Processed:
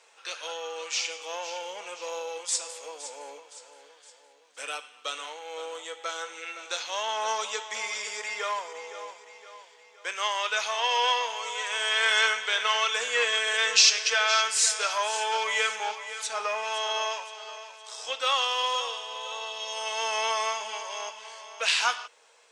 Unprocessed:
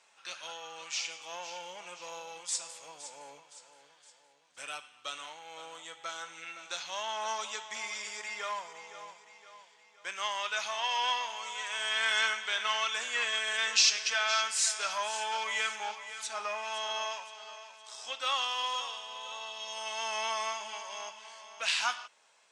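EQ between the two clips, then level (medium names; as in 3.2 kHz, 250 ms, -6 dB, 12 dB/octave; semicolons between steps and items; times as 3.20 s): high-pass 260 Hz 24 dB/octave; peaking EQ 470 Hz +12 dB 0.23 oct; +5.5 dB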